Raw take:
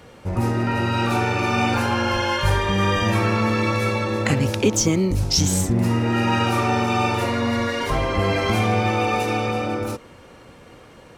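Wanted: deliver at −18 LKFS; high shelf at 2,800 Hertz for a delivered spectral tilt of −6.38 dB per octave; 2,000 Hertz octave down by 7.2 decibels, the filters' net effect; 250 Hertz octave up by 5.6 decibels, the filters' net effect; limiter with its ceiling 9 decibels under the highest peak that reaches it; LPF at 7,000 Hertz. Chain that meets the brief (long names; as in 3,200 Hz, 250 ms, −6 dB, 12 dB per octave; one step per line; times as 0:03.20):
low-pass filter 7,000 Hz
parametric band 250 Hz +7 dB
parametric band 2,000 Hz −6 dB
high-shelf EQ 2,800 Hz −7.5 dB
level +3.5 dB
brickwall limiter −9 dBFS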